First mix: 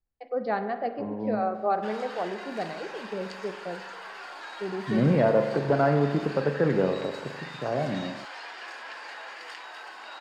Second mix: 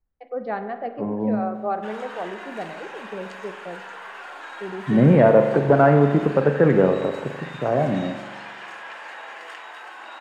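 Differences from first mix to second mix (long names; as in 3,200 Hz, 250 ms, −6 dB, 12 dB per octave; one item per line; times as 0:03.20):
second voice +7.5 dB
background: send on
master: add parametric band 4,700 Hz −11.5 dB 0.44 octaves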